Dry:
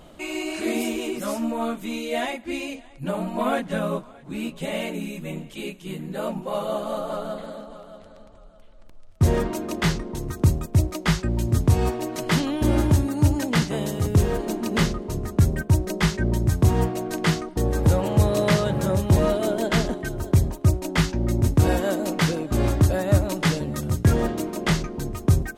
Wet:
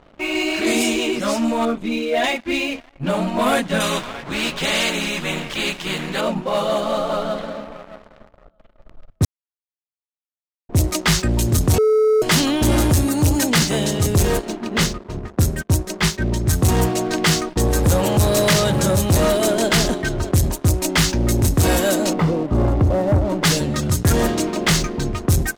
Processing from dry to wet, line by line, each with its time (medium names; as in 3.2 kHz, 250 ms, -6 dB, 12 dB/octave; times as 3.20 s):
1.65–2.24 s: resonances exaggerated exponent 1.5
3.80–6.21 s: spectrum-flattening compressor 2:1
9.25–10.69 s: mute
11.78–12.22 s: bleep 433 Hz -16.5 dBFS
14.39–16.48 s: upward expansion, over -31 dBFS
22.13–23.44 s: Savitzky-Golay filter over 65 samples
whole clip: level-controlled noise filter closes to 1.4 kHz, open at -18 dBFS; treble shelf 2.7 kHz +11 dB; waveshaping leveller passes 3; trim -4.5 dB